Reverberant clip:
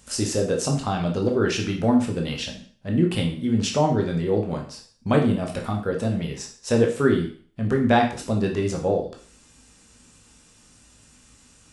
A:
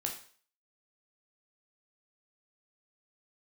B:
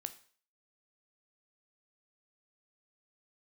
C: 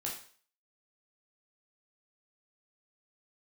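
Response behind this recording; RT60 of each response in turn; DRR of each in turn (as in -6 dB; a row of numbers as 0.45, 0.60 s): A; 0.45, 0.45, 0.45 s; 0.5, 9.5, -3.5 dB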